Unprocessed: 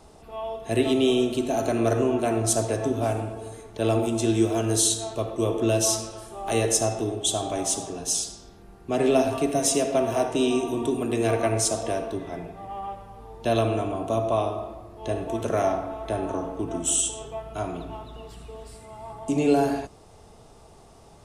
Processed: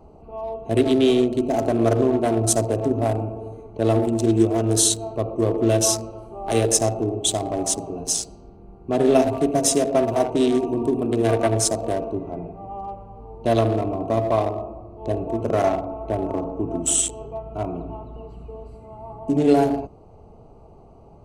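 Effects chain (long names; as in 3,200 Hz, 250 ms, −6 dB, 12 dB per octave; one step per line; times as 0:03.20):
adaptive Wiener filter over 25 samples
level +4.5 dB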